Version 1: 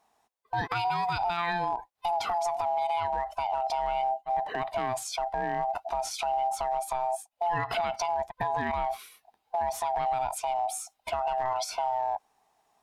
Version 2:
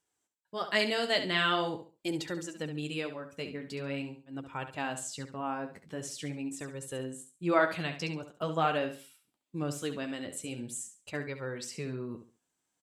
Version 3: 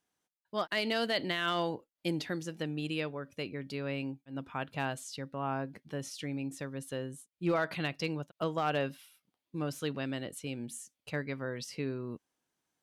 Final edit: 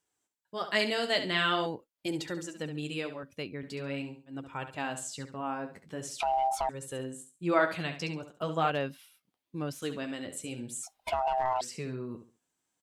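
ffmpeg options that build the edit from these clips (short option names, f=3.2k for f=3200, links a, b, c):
-filter_complex "[2:a]asplit=3[a][b][c];[0:a]asplit=2[d][e];[1:a]asplit=6[f][g][h][i][j][k];[f]atrim=end=1.662[l];[a]atrim=start=1.658:end=2.062[m];[g]atrim=start=2.058:end=3.232[n];[b]atrim=start=3.228:end=3.632[o];[h]atrim=start=3.628:end=6.202[p];[d]atrim=start=6.198:end=6.692[q];[i]atrim=start=6.688:end=8.702[r];[c]atrim=start=8.698:end=9.822[s];[j]atrim=start=9.818:end=10.832[t];[e]atrim=start=10.828:end=11.612[u];[k]atrim=start=11.608[v];[l][m]acrossfade=d=0.004:c1=hsin:c2=hsin[w];[w][n]acrossfade=d=0.004:c1=hsin:c2=hsin[x];[x][o]acrossfade=d=0.004:c1=hsin:c2=hsin[y];[y][p]acrossfade=d=0.004:c1=hsin:c2=hsin[z];[z][q]acrossfade=d=0.004:c1=hsin:c2=hsin[aa];[aa][r]acrossfade=d=0.004:c1=hsin:c2=hsin[ab];[ab][s]acrossfade=d=0.004:c1=hsin:c2=hsin[ac];[ac][t]acrossfade=d=0.004:c1=hsin:c2=hsin[ad];[ad][u]acrossfade=d=0.004:c1=hsin:c2=hsin[ae];[ae][v]acrossfade=d=0.004:c1=hsin:c2=hsin"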